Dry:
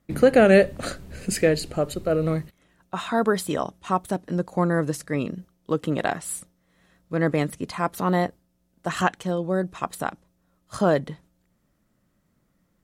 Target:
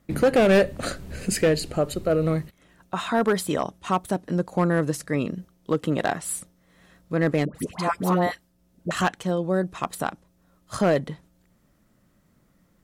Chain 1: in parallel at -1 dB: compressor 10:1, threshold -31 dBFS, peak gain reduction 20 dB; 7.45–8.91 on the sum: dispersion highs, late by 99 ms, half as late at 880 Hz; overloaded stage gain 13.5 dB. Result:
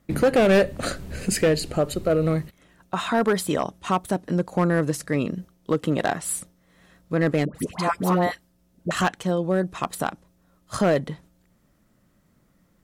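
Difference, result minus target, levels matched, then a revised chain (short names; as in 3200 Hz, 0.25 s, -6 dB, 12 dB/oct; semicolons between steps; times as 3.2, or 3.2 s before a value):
compressor: peak gain reduction -8 dB
in parallel at -1 dB: compressor 10:1, threshold -40 dBFS, peak gain reduction 28 dB; 7.45–8.91 on the sum: dispersion highs, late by 99 ms, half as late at 880 Hz; overloaded stage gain 13.5 dB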